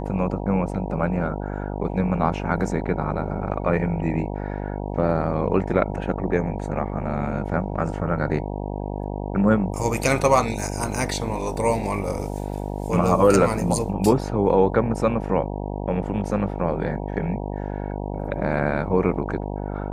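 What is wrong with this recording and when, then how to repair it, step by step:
buzz 50 Hz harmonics 19 -29 dBFS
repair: de-hum 50 Hz, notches 19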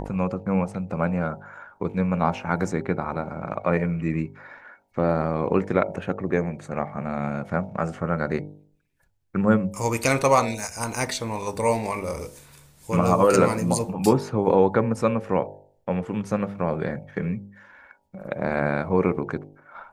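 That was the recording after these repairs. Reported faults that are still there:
nothing left

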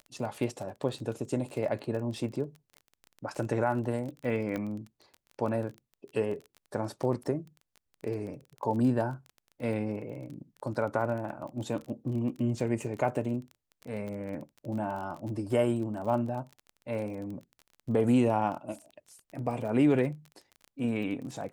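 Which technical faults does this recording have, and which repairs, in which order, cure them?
crackle 23 per s -37 dBFS
4.56 s: pop -21 dBFS
14.08 s: pop -29 dBFS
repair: de-click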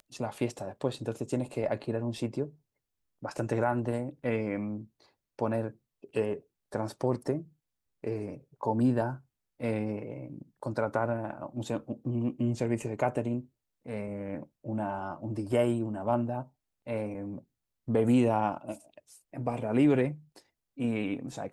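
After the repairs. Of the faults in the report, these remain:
nothing left

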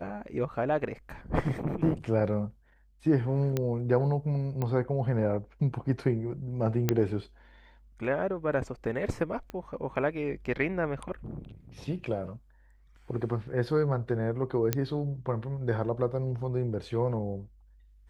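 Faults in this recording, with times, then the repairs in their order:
3.57 s: pop -15 dBFS
4.62 s: pop -20 dBFS
6.89 s: pop -10 dBFS
9.50 s: pop -25 dBFS
14.73 s: pop -11 dBFS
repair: de-click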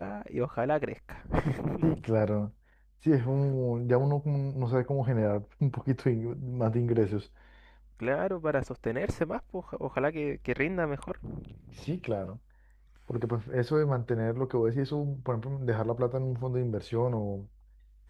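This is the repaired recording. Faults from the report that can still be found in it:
9.50 s: pop

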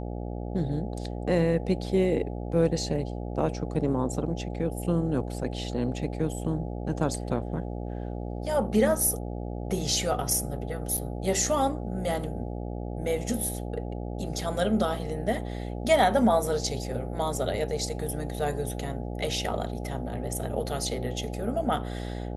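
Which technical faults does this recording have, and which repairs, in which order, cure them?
buzz 60 Hz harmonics 14 -34 dBFS
10.97–10.98 s: dropout 6.3 ms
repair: de-hum 60 Hz, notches 14; interpolate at 10.97 s, 6.3 ms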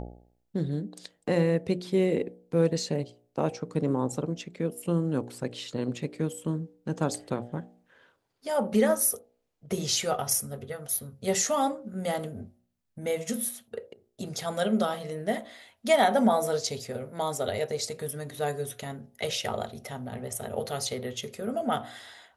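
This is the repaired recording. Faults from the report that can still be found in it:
nothing left

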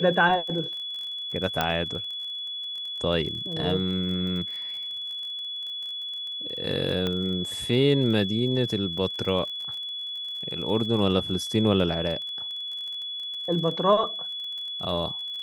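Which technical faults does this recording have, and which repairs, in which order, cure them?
crackle 31 per s -34 dBFS
whine 3.4 kHz -31 dBFS
1.61 s: pop -9 dBFS
7.07 s: pop -15 dBFS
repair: de-click; band-stop 3.4 kHz, Q 30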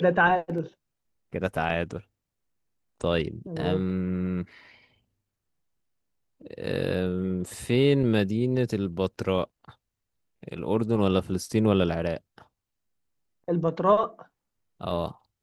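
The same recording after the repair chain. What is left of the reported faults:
nothing left

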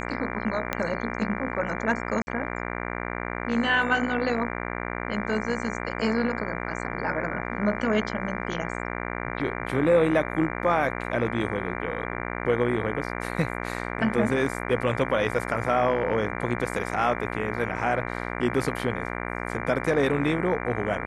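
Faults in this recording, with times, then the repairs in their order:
buzz 60 Hz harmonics 39 -32 dBFS
0.73 s: pop -10 dBFS
2.22–2.27 s: dropout 50 ms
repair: de-click; de-hum 60 Hz, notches 39; interpolate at 2.22 s, 50 ms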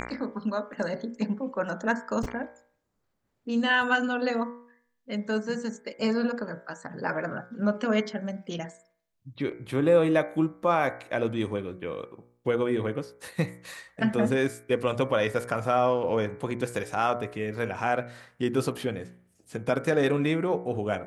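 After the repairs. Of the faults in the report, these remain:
0.73 s: pop

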